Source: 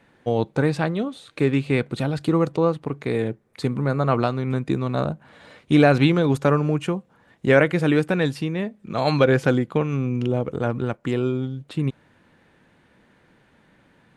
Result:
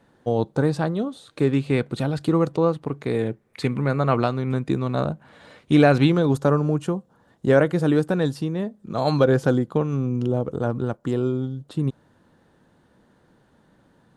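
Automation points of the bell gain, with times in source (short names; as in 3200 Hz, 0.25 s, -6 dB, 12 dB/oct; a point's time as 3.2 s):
bell 2300 Hz 0.82 oct
1.06 s -11 dB
1.76 s -4 dB
3.19 s -4 dB
3.64 s +7.5 dB
4.38 s -2.5 dB
5.92 s -2.5 dB
6.45 s -13 dB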